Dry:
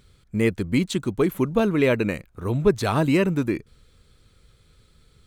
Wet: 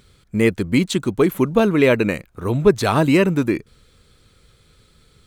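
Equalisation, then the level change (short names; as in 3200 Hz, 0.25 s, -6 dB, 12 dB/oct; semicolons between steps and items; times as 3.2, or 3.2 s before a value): low shelf 110 Hz -6 dB; +5.5 dB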